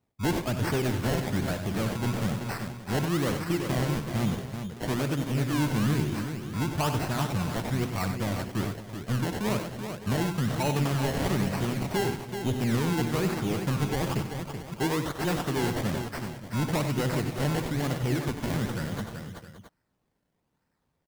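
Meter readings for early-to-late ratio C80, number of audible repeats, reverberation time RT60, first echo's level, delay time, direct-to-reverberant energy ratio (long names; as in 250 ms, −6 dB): no reverb audible, 6, no reverb audible, −13.0 dB, 63 ms, no reverb audible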